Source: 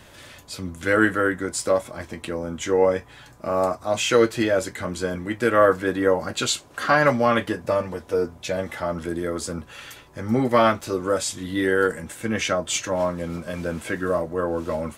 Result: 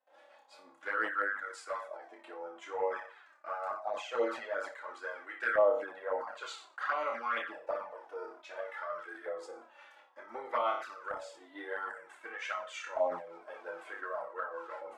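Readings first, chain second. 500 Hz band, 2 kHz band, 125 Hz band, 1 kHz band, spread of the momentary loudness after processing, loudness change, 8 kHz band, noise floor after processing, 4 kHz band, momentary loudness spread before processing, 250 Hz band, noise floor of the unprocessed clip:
-14.0 dB, -11.0 dB, under -40 dB, -11.0 dB, 14 LU, -13.5 dB, under -25 dB, -61 dBFS, -19.5 dB, 12 LU, -27.0 dB, -48 dBFS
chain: HPF 460 Hz 12 dB/oct; gate with hold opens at -40 dBFS; bell 1100 Hz -3.5 dB 0.4 oct; LFO band-pass saw up 0.54 Hz 710–1500 Hz; tremolo 5.7 Hz, depth 46%; flutter echo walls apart 5.1 m, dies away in 0.36 s; envelope flanger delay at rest 3.9 ms, full sweep at -23.5 dBFS; sustainer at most 100 dB/s

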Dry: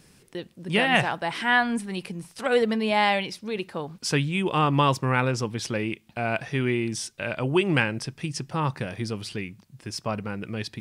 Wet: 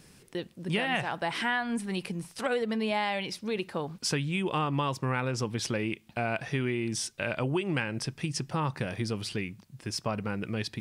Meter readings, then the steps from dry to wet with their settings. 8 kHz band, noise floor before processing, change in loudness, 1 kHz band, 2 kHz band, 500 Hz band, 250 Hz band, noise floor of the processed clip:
-1.0 dB, -58 dBFS, -5.5 dB, -7.0 dB, -6.5 dB, -5.5 dB, -4.5 dB, -58 dBFS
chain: compressor 6:1, threshold -26 dBFS, peak gain reduction 10.5 dB

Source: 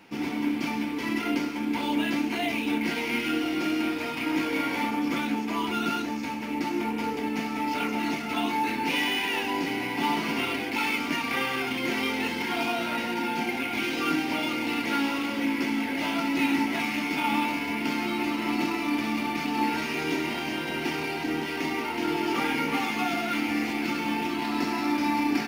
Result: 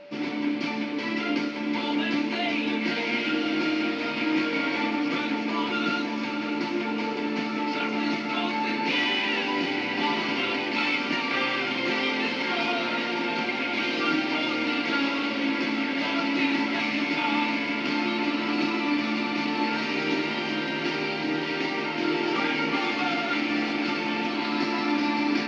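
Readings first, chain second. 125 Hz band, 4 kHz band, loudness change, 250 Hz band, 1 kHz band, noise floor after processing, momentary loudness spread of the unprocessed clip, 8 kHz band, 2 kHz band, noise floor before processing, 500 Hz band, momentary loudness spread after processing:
-0.5 dB, +3.5 dB, +1.5 dB, +0.5 dB, 0.0 dB, -30 dBFS, 4 LU, -6.5 dB, +2.5 dB, -32 dBFS, +2.5 dB, 3 LU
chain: speaker cabinet 160–5200 Hz, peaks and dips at 240 Hz -3 dB, 830 Hz -4 dB, 4300 Hz +5 dB; whine 580 Hz -45 dBFS; diffused feedback echo 0.602 s, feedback 75%, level -10 dB; gain +1.5 dB

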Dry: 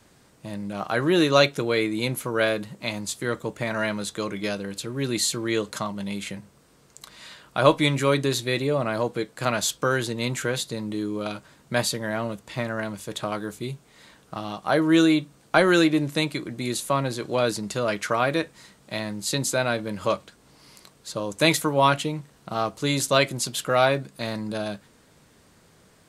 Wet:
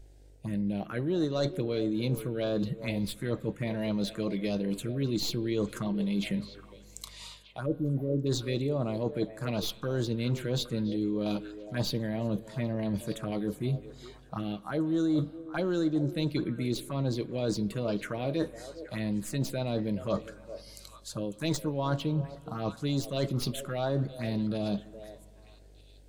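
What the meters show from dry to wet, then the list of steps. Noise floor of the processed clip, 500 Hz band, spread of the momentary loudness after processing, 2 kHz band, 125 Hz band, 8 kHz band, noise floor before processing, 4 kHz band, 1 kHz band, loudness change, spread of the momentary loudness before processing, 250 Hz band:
-54 dBFS, -8.0 dB, 8 LU, -16.0 dB, -1.5 dB, -13.5 dB, -57 dBFS, -10.5 dB, -14.5 dB, -7.0 dB, 14 LU, -4.0 dB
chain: tracing distortion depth 0.02 ms; buzz 50 Hz, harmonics 33, -51 dBFS -6 dB/oct; spectral noise reduction 13 dB; low shelf 460 Hz +9 dB; reverse; compressor 5:1, threshold -30 dBFS, peak gain reduction 20 dB; reverse; spectral delete 7.66–8.26, 590–11000 Hz; envelope phaser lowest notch 170 Hz, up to 2500 Hz, full sweep at -26.5 dBFS; on a send: delay with a stepping band-pass 0.411 s, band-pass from 510 Hz, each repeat 1.4 oct, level -10 dB; on the sum: spring tank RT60 2.6 s, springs 32/44 ms, chirp 60 ms, DRR 19 dB; gain +2.5 dB

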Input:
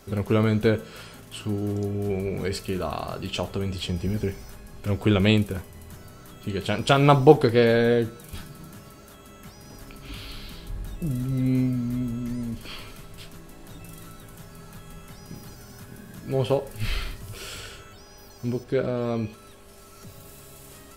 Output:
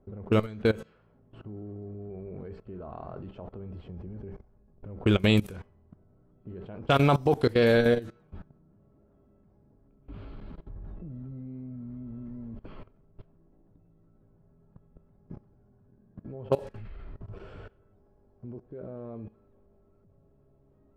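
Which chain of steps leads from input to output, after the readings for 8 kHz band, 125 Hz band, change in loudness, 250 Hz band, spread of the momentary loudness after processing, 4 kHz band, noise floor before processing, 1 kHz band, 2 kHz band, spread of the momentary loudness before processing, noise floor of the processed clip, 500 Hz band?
under -10 dB, -6.0 dB, -4.0 dB, -5.5 dB, 23 LU, -6.0 dB, -47 dBFS, -6.5 dB, -4.0 dB, 24 LU, -63 dBFS, -5.5 dB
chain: level quantiser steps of 20 dB; low-pass opened by the level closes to 540 Hz, open at -21 dBFS

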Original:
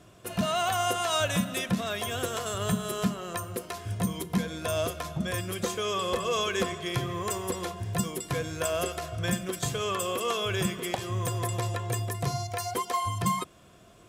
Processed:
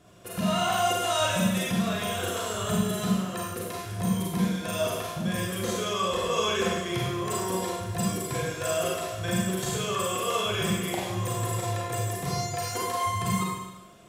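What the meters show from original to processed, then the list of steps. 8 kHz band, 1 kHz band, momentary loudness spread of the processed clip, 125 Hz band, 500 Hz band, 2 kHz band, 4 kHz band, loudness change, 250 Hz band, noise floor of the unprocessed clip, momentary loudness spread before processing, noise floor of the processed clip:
+2.0 dB, +2.0 dB, 6 LU, +1.5 dB, +2.0 dB, +1.5 dB, +2.0 dB, +2.0 dB, +3.5 dB, -55 dBFS, 6 LU, -40 dBFS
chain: Schroeder reverb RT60 1 s, combs from 33 ms, DRR -4.5 dB; gain -4 dB

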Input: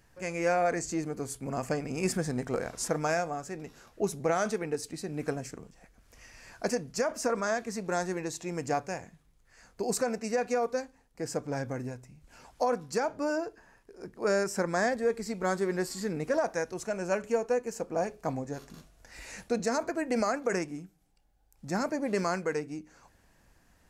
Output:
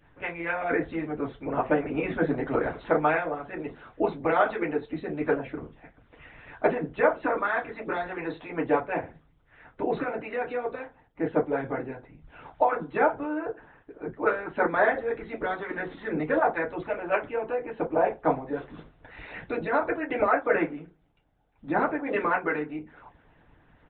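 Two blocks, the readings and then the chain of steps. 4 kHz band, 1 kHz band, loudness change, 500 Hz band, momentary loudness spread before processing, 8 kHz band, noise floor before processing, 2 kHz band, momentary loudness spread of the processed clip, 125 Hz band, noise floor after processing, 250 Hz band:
n/a, +6.0 dB, +3.5 dB, +3.0 dB, 13 LU, under -40 dB, -65 dBFS, +6.5 dB, 13 LU, -1.5 dB, -62 dBFS, +3.0 dB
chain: FDN reverb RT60 0.31 s, low-frequency decay 0.95×, high-frequency decay 0.55×, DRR -3.5 dB; harmonic-percussive split harmonic -17 dB; downsampling 8000 Hz; gain +6.5 dB

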